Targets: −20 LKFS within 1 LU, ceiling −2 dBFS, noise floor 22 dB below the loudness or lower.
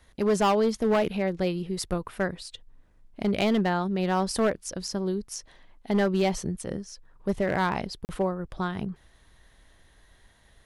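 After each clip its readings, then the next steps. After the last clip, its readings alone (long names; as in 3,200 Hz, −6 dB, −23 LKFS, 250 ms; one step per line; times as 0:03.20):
share of clipped samples 1.4%; peaks flattened at −18.0 dBFS; number of dropouts 1; longest dropout 39 ms; integrated loudness −27.5 LKFS; sample peak −18.0 dBFS; target loudness −20.0 LKFS
→ clipped peaks rebuilt −18 dBFS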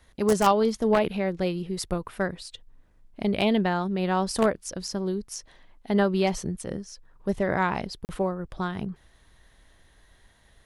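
share of clipped samples 0.0%; number of dropouts 1; longest dropout 39 ms
→ repair the gap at 0:08.05, 39 ms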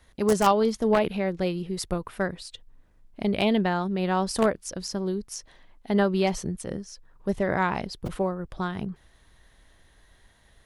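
number of dropouts 0; integrated loudness −26.5 LKFS; sample peak −9.0 dBFS; target loudness −20.0 LKFS
→ level +6.5 dB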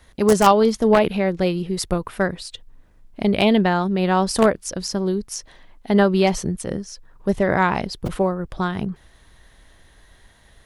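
integrated loudness −20.0 LKFS; sample peak −2.5 dBFS; background noise floor −53 dBFS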